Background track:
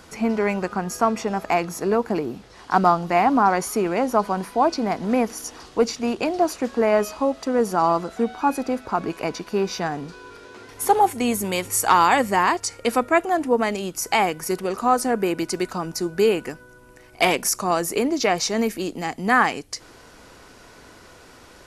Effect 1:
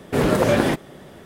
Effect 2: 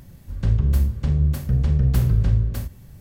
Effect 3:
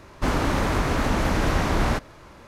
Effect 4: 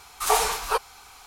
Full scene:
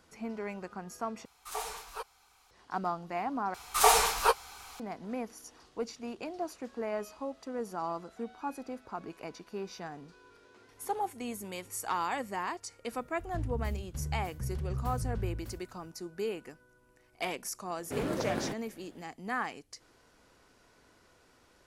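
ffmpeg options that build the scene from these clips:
-filter_complex "[4:a]asplit=2[a][b];[0:a]volume=-16.5dB[c];[b]asplit=2[d][e];[e]adelay=15,volume=-11dB[f];[d][f]amix=inputs=2:normalize=0[g];[c]asplit=3[h][i][j];[h]atrim=end=1.254[k];[a]atrim=end=1.26,asetpts=PTS-STARTPTS,volume=-16.5dB[l];[i]atrim=start=2.506:end=3.544[m];[g]atrim=end=1.26,asetpts=PTS-STARTPTS,volume=-1dB[n];[j]atrim=start=4.796[o];[2:a]atrim=end=3,asetpts=PTS-STARTPTS,volume=-17dB,afade=t=in:d=0.004:c=hsin,afade=t=out:st=2.996:d=0.004:c=hsin,adelay=12910[p];[1:a]atrim=end=1.25,asetpts=PTS-STARTPTS,volume=-16dB,afade=t=in:d=0.004:c=hsin,afade=t=out:st=1.246:d=0.004:c=hsin,adelay=17780[q];[k][l]acrossfade=d=0.004:c1=hsin:c2=hsin[r];[r][m]acrossfade=d=0.004:c1=hsin:c2=hsin[s];[s][n]acrossfade=d=0.004:c1=hsin:c2=hsin[t];[t][o]acrossfade=d=0.004:c1=hsin:c2=hsin[u];[u][p][q]amix=inputs=3:normalize=0"

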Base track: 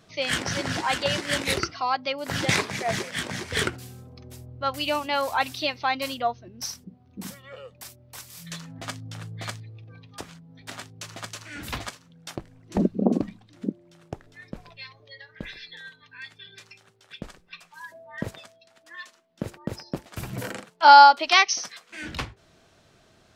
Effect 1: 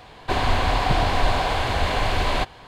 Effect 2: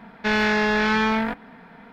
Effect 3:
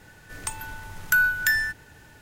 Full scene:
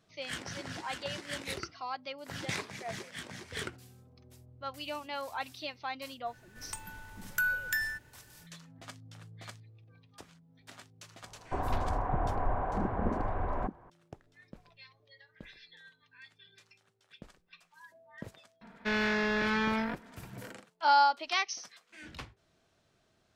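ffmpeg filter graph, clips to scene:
-filter_complex "[0:a]volume=-13dB[a];[1:a]lowpass=f=1.4k:w=0.5412,lowpass=f=1.4k:w=1.3066[b];[2:a]asuperstop=centerf=800:order=4:qfactor=6.4[c];[3:a]atrim=end=2.21,asetpts=PTS-STARTPTS,volume=-10dB,afade=t=in:d=0.004:c=hsin,afade=t=out:st=2.206:d=0.004:c=hsin,adelay=276066S[d];[b]atrim=end=2.67,asetpts=PTS-STARTPTS,volume=-10.5dB,afade=t=in:d=0.004:c=hsin,afade=t=out:st=2.666:d=0.004:c=hsin,adelay=11230[e];[c]atrim=end=1.92,asetpts=PTS-STARTPTS,volume=-9dB,afade=t=in:d=0.004:c=hsin,afade=t=out:st=1.916:d=0.004:c=hsin,adelay=18610[f];[a][d][e][f]amix=inputs=4:normalize=0"

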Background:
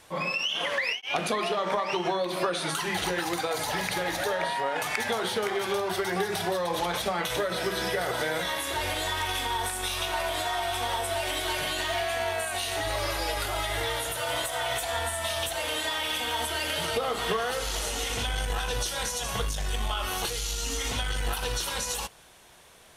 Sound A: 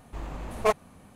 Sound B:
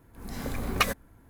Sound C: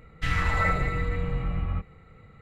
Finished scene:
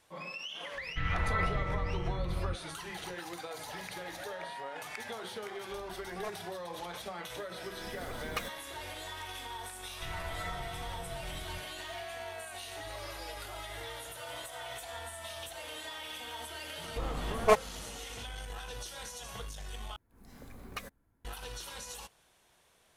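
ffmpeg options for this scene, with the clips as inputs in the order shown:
-filter_complex "[3:a]asplit=2[a][b];[1:a]asplit=2[c][d];[2:a]asplit=2[e][f];[0:a]volume=-13dB[g];[a]lowpass=2.7k[h];[g]asplit=2[i][j];[i]atrim=end=19.964[k];[f]atrim=end=1.29,asetpts=PTS-STARTPTS,volume=-17dB[l];[j]atrim=start=21.246[m];[h]atrim=end=2.41,asetpts=PTS-STARTPTS,volume=-6.5dB,afade=t=in:d=0.004:c=hsin,afade=t=out:st=2.406:d=0.004:c=hsin,adelay=740[n];[c]atrim=end=1.15,asetpts=PTS-STARTPTS,volume=-17.5dB,afade=t=in:d=0.004:c=hsin,afade=t=out:st=1.146:d=0.004:c=hsin,adelay=5580[o];[e]atrim=end=1.29,asetpts=PTS-STARTPTS,volume=-12.5dB,afade=t=in:d=0.004:c=hsin,afade=t=out:st=1.286:d=0.004:c=hsin,adelay=7560[p];[b]atrim=end=2.41,asetpts=PTS-STARTPTS,volume=-16.5dB,afade=t=in:d=0.004:c=hsin,afade=t=out:st=2.406:d=0.004:c=hsin,adelay=9790[q];[d]atrim=end=1.15,asetpts=PTS-STARTPTS,afade=t=in:d=0.004:c=hsin,afade=t=out:st=1.146:d=0.004:c=hsin,adelay=16830[r];[k][l]acrossfade=d=0.004:c1=hsin:c2=hsin[s];[s][m]acrossfade=d=0.004:c1=hsin:c2=hsin[t];[t][n][o][p][q][r]amix=inputs=6:normalize=0"

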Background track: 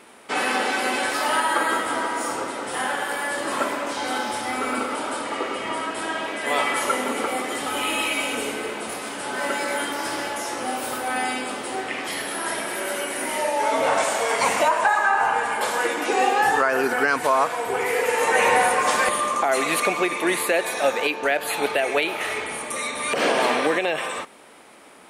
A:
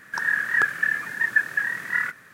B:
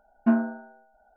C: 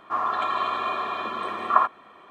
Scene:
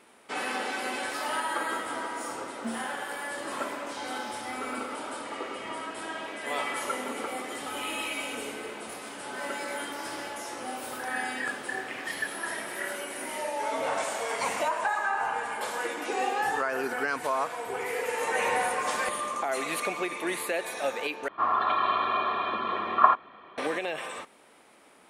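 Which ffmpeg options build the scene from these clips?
-filter_complex "[0:a]volume=-9dB[a];[2:a]acrusher=bits=7:mix=0:aa=0.000001[b];[3:a]lowpass=f=4.4k:w=0.5412,lowpass=f=4.4k:w=1.3066[c];[a]asplit=2[d][e];[d]atrim=end=21.284[f];[c]atrim=end=2.3[g];[e]atrim=start=23.576[h];[b]atrim=end=1.16,asetpts=PTS-STARTPTS,volume=-14.5dB,afade=t=in:d=0.004:c=hsin,afade=t=out:st=1.156:d=0.004:c=hsin,adelay=2380[i];[1:a]atrim=end=2.33,asetpts=PTS-STARTPTS,volume=-13dB,afade=t=in:d=0.004:c=hsin,afade=t=out:st=2.326:d=0.004:c=hsin,adelay=10860[j];[f][g]acrossfade=d=0.004:c1=hsin:c2=hsin[k];[k][h]acrossfade=d=0.004:c1=hsin:c2=hsin[l];[l][i][j]amix=inputs=3:normalize=0"

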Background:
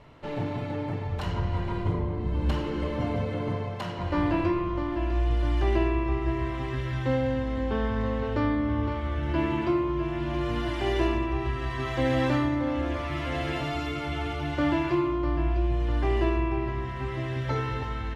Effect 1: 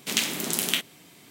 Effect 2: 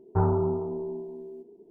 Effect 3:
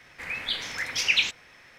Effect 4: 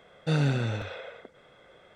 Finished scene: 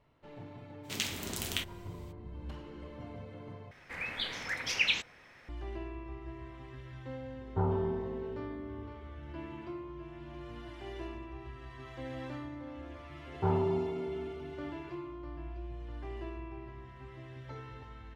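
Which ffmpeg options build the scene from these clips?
-filter_complex "[2:a]asplit=2[a][b];[0:a]volume=-17dB[c];[1:a]equalizer=f=11k:w=1.3:g=-7.5[d];[3:a]highshelf=f=2.2k:g=-8.5[e];[b]highpass=100[f];[c]asplit=2[g][h];[g]atrim=end=3.714[i];[e]atrim=end=1.78,asetpts=PTS-STARTPTS,volume=-1dB[j];[h]atrim=start=5.486[k];[d]atrim=end=1.3,asetpts=PTS-STARTPTS,volume=-9dB,afade=t=in:d=0.02,afade=t=out:st=1.28:d=0.02,adelay=830[l];[a]atrim=end=1.7,asetpts=PTS-STARTPTS,volume=-7dB,afade=t=in:d=0.004:c=hsin,afade=t=out:st=1.696:d=0.004:c=hsin,adelay=7410[m];[f]atrim=end=1.7,asetpts=PTS-STARTPTS,volume=-4.5dB,afade=t=in:d=0.004:c=hsin,afade=t=out:st=1.696:d=0.004:c=hsin,adelay=13270[n];[i][j]acrossfade=d=0.004:c1=hsin:c2=hsin[o];[o][k]acrossfade=d=0.004:c1=hsin:c2=hsin[p];[p][l][m][n]amix=inputs=4:normalize=0"

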